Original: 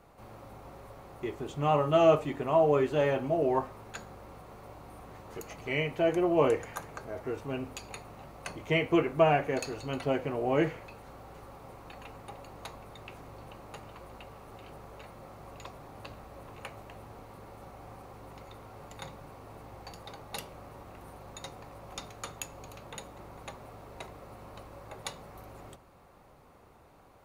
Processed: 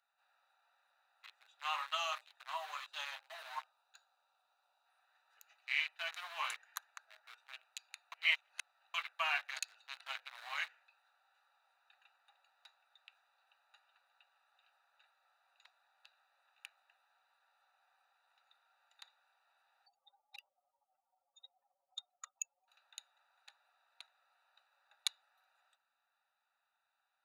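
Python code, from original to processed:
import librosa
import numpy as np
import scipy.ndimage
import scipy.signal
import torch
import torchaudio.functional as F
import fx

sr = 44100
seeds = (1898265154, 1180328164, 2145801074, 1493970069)

y = fx.peak_eq(x, sr, hz=1900.0, db=-10.0, octaves=0.77, at=(1.95, 4.86))
y = fx.spec_expand(y, sr, power=3.1, at=(19.86, 22.68))
y = fx.edit(y, sr, fx.reverse_span(start_s=8.12, length_s=0.82), tone=tone)
y = fx.wiener(y, sr, points=41)
y = scipy.signal.sosfilt(scipy.signal.bessel(8, 1800.0, 'highpass', norm='mag', fs=sr, output='sos'), y)
y = fx.peak_eq(y, sr, hz=3900.0, db=11.0, octaves=0.24)
y = y * librosa.db_to_amplitude(3.0)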